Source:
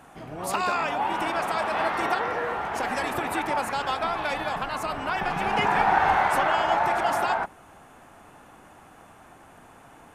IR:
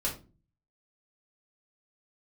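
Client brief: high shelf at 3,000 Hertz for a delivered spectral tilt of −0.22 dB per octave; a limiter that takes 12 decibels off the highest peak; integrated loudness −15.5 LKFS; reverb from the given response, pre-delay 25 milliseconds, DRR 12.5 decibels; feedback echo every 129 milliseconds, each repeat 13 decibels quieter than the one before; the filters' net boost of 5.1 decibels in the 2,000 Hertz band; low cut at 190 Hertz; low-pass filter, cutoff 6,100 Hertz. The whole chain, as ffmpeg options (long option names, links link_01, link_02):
-filter_complex "[0:a]highpass=190,lowpass=6100,equalizer=frequency=2000:width_type=o:gain=5.5,highshelf=frequency=3000:gain=3.5,alimiter=limit=-18dB:level=0:latency=1,aecho=1:1:129|258|387:0.224|0.0493|0.0108,asplit=2[link_01][link_02];[1:a]atrim=start_sample=2205,adelay=25[link_03];[link_02][link_03]afir=irnorm=-1:irlink=0,volume=-17.5dB[link_04];[link_01][link_04]amix=inputs=2:normalize=0,volume=11dB"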